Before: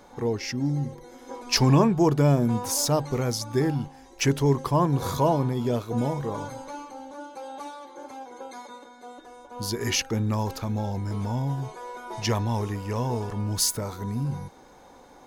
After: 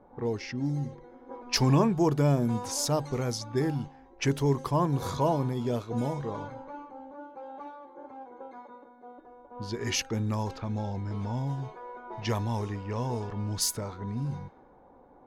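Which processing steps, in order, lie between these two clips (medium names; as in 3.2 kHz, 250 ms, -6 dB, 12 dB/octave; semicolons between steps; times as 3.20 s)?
level-controlled noise filter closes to 850 Hz, open at -21 dBFS; trim -4 dB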